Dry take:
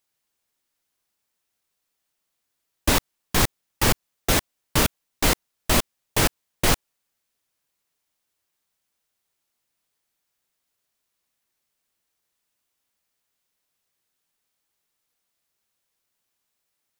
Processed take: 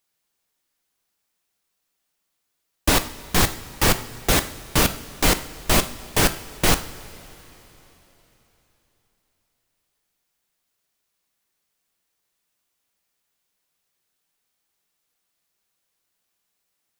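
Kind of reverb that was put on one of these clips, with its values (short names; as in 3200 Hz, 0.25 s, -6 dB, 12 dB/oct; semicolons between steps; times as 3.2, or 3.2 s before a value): two-slope reverb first 0.5 s, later 3.8 s, from -15 dB, DRR 9 dB; gain +1.5 dB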